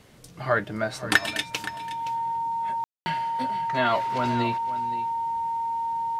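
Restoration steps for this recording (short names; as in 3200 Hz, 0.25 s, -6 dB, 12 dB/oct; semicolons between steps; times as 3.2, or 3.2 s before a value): clip repair -4 dBFS; notch 920 Hz, Q 30; room tone fill 2.84–3.06; inverse comb 0.52 s -14.5 dB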